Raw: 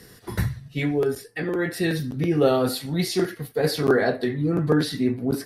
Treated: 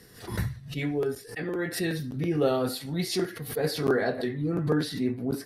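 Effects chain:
background raised ahead of every attack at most 110 dB per second
level −5.5 dB

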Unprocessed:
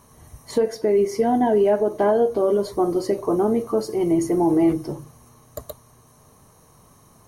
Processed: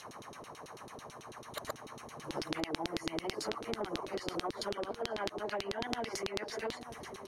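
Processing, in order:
played backwards from end to start
auto-filter band-pass saw down 9.1 Hz 280–4,100 Hz
downward compressor 6 to 1, threshold −33 dBFS, peak gain reduction 15 dB
on a send: single-tap delay 895 ms −21.5 dB
on the sum: every bin compressed towards the loudest bin 2 to 1
level +10 dB

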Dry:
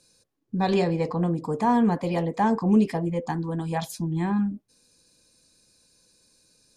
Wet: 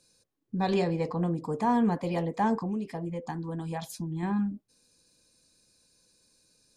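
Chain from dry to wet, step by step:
0:02.59–0:04.23: downward compressor 4 to 1, threshold −27 dBFS, peak gain reduction 10.5 dB
level −4 dB

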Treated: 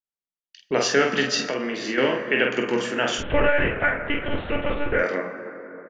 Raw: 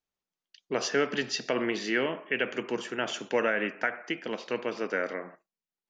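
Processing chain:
noise gate with hold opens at −42 dBFS
dense smooth reverb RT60 4.2 s, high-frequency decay 0.3×, DRR 9.5 dB
0:01.45–0:01.98: downward compressor 2.5 to 1, threshold −35 dBFS, peak gain reduction 9 dB
0:03.18–0:04.99: one-pitch LPC vocoder at 8 kHz 290 Hz
ambience of single reflections 22 ms −8.5 dB, 47 ms −5 dB
level +6.5 dB

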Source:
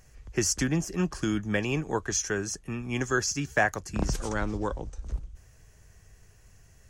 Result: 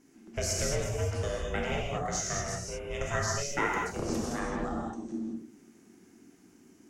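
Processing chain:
ring modulation 280 Hz
reverb whose tail is shaped and stops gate 250 ms flat, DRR −2.5 dB
level −4.5 dB

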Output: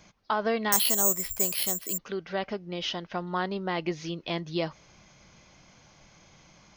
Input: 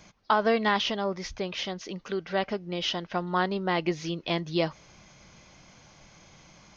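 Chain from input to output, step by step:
in parallel at −3 dB: brickwall limiter −18 dBFS, peak gain reduction 7 dB
0:00.72–0:01.98: on the sum: bad sample-rate conversion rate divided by 6×, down filtered, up zero stuff
level −7 dB

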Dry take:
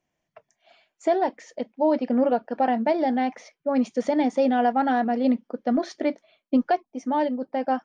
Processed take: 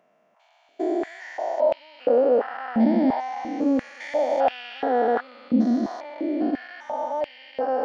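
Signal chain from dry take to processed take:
spectrum averaged block by block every 400 ms
high-pass on a step sequencer 2.9 Hz 220–2,600 Hz
level +2.5 dB

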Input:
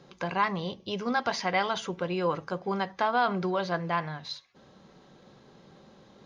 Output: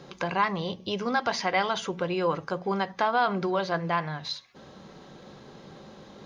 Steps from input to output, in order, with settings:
mains-hum notches 60/120/180/240 Hz
in parallel at +3 dB: downward compressor, threshold −42 dBFS, peak gain reduction 20 dB

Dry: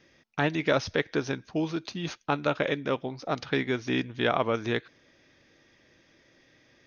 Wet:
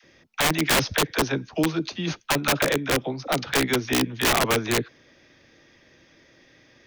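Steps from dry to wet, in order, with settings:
all-pass dispersion lows, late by 42 ms, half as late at 500 Hz
wrap-around overflow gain 19.5 dB
level +5.5 dB

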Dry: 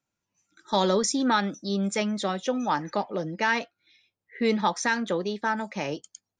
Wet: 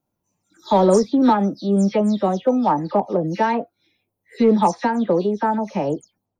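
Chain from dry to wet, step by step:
every frequency bin delayed by itself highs early, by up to 139 ms
flat-topped bell 3,200 Hz −14 dB 2.9 octaves
in parallel at −7 dB: gain into a clipping stage and back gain 20 dB
on the sum: level +6.5 dB

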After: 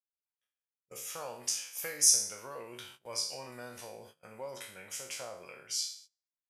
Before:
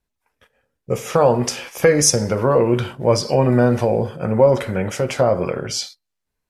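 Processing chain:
peak hold with a decay on every bin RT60 0.53 s
first-order pre-emphasis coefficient 0.97
noise gate −45 dBFS, range −19 dB
level −8.5 dB

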